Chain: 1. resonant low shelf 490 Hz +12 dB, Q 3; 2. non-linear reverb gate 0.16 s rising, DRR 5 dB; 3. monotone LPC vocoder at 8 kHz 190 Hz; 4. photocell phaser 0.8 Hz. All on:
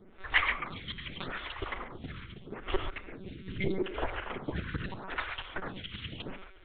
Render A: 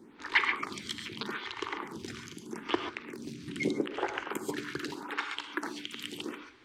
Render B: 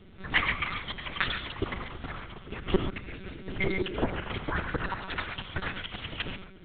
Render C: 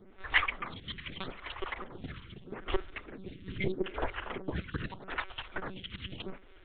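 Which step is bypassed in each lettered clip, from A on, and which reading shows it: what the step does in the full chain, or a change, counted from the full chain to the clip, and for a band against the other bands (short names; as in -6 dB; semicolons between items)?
3, momentary loudness spread change -2 LU; 4, crest factor change -2.0 dB; 2, loudness change -1.0 LU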